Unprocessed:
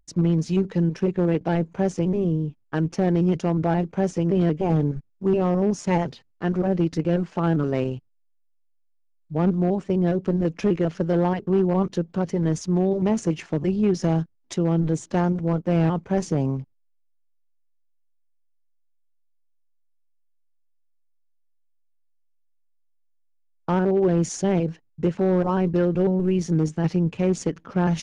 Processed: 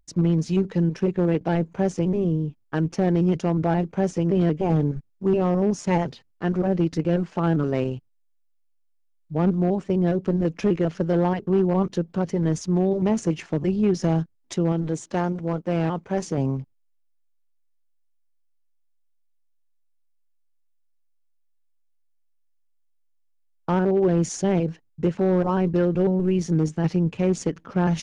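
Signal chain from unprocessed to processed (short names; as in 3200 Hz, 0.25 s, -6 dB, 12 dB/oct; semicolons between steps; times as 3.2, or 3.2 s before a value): 14.72–16.38 low shelf 210 Hz -7.5 dB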